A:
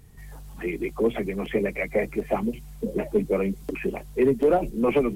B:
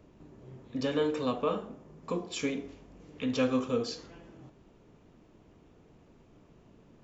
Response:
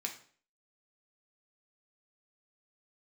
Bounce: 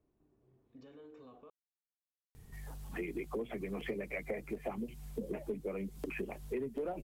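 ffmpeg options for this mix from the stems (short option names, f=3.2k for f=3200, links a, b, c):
-filter_complex "[0:a]adelay=2350,volume=-4.5dB[a];[1:a]highshelf=f=2.6k:g=-11.5,aecho=1:1:2.7:0.32,alimiter=level_in=3.5dB:limit=-24dB:level=0:latency=1:release=60,volume=-3.5dB,volume=-20dB,asplit=3[b][c][d];[b]atrim=end=1.5,asetpts=PTS-STARTPTS,afade=t=out:st=1.496:d=0.004:c=hsin[e];[c]atrim=start=1.5:end=3.6,asetpts=PTS-STARTPTS,volume=0[f];[d]atrim=start=3.6,asetpts=PTS-STARTPTS,afade=t=in:d=0.004:c=hsin[g];[e][f][g]concat=n=3:v=0:a=1[h];[a][h]amix=inputs=2:normalize=0,acompressor=threshold=-36dB:ratio=6"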